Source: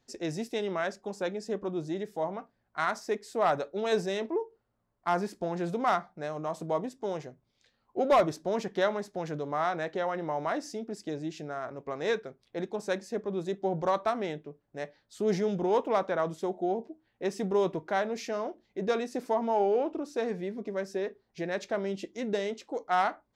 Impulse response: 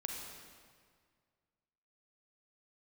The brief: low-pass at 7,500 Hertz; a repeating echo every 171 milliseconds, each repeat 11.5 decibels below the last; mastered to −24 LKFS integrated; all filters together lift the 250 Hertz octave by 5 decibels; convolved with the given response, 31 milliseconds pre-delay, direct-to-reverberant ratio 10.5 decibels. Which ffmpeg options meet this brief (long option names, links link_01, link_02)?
-filter_complex "[0:a]lowpass=7500,equalizer=frequency=250:width_type=o:gain=7,aecho=1:1:171|342|513:0.266|0.0718|0.0194,asplit=2[link_01][link_02];[1:a]atrim=start_sample=2205,adelay=31[link_03];[link_02][link_03]afir=irnorm=-1:irlink=0,volume=-10.5dB[link_04];[link_01][link_04]amix=inputs=2:normalize=0,volume=5dB"